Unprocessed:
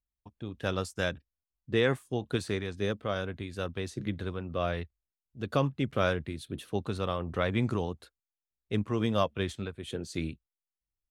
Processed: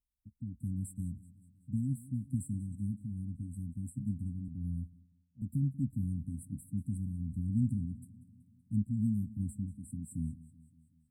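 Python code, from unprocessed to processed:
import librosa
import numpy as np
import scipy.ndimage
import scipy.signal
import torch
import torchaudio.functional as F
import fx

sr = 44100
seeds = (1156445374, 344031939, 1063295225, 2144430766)

p1 = fx.brickwall_bandstop(x, sr, low_hz=280.0, high_hz=7500.0)
p2 = p1 + fx.echo_feedback(p1, sr, ms=189, feedback_pct=57, wet_db=-18.5, dry=0)
y = fx.band_widen(p2, sr, depth_pct=70, at=(4.48, 5.42))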